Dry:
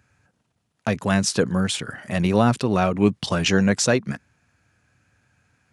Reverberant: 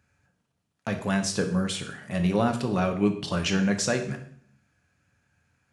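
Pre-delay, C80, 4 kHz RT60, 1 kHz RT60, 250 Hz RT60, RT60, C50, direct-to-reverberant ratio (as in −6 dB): 3 ms, 13.5 dB, 0.55 s, 0.55 s, 0.80 s, 0.60 s, 9.5 dB, 4.5 dB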